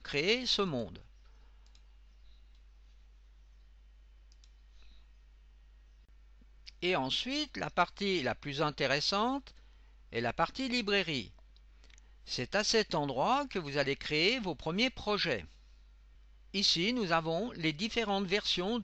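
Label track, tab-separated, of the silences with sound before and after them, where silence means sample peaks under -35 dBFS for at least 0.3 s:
0.950000	6.680000	silence
9.470000	10.150000	silence
11.220000	12.300000	silence
15.410000	16.540000	silence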